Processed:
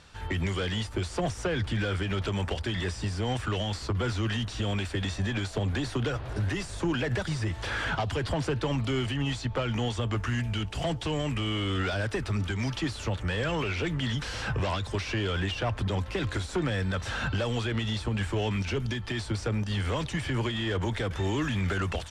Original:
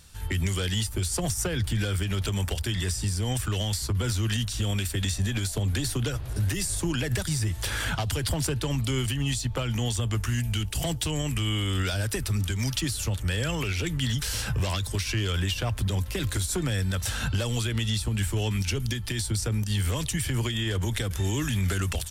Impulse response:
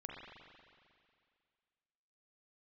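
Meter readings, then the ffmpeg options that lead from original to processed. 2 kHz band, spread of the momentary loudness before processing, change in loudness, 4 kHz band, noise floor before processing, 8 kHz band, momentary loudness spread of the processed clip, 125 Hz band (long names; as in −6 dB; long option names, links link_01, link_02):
+0.5 dB, 2 LU, −2.5 dB, −3.5 dB, −34 dBFS, −13.0 dB, 3 LU, −3.5 dB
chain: -filter_complex "[0:a]asplit=2[link_01][link_02];[link_02]highpass=frequency=720:poles=1,volume=17dB,asoftclip=type=tanh:threshold=-17.5dB[link_03];[link_01][link_03]amix=inputs=2:normalize=0,lowpass=frequency=1000:poles=1,volume=-6dB,lowpass=7100"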